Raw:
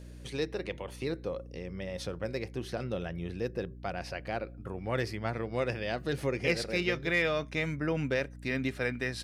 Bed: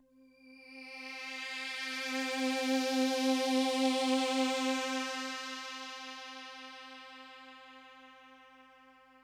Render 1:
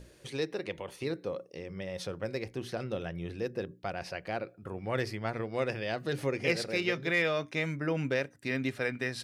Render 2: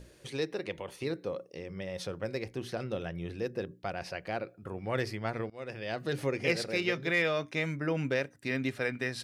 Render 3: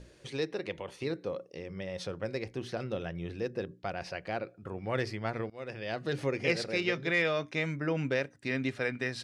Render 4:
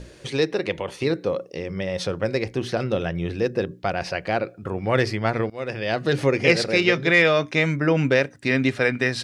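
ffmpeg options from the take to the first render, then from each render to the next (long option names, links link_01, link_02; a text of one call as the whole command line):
ffmpeg -i in.wav -af "bandreject=frequency=60:width_type=h:width=6,bandreject=frequency=120:width_type=h:width=6,bandreject=frequency=180:width_type=h:width=6,bandreject=frequency=240:width_type=h:width=6,bandreject=frequency=300:width_type=h:width=6" out.wav
ffmpeg -i in.wav -filter_complex "[0:a]asplit=2[link_01][link_02];[link_01]atrim=end=5.5,asetpts=PTS-STARTPTS,afade=type=out:start_time=5.496:duration=0.004:curve=hsin:silence=0.0841395[link_03];[link_02]atrim=start=5.5,asetpts=PTS-STARTPTS,afade=type=in:duration=0.52:silence=0.0841395[link_04];[link_03][link_04]concat=n=2:v=0:a=1" out.wav
ffmpeg -i in.wav -af "lowpass=7800" out.wav
ffmpeg -i in.wav -af "volume=11.5dB" out.wav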